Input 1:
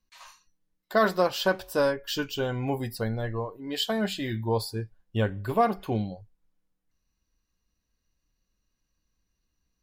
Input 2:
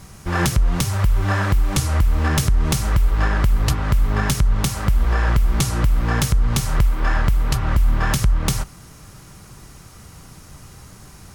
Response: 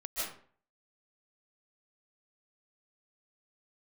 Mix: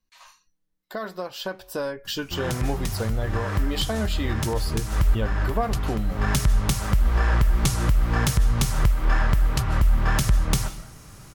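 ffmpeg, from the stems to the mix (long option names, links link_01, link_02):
-filter_complex "[0:a]acompressor=threshold=-34dB:ratio=2.5,volume=-1dB,asplit=2[link_01][link_02];[1:a]adelay=2050,volume=-11dB,asplit=2[link_03][link_04];[link_04]volume=-16dB[link_05];[link_02]apad=whole_len=590590[link_06];[link_03][link_06]sidechaincompress=threshold=-44dB:ratio=3:attack=8.7:release=256[link_07];[2:a]atrim=start_sample=2205[link_08];[link_05][link_08]afir=irnorm=-1:irlink=0[link_09];[link_01][link_07][link_09]amix=inputs=3:normalize=0,dynaudnorm=framelen=310:gausssize=11:maxgain=7.5dB"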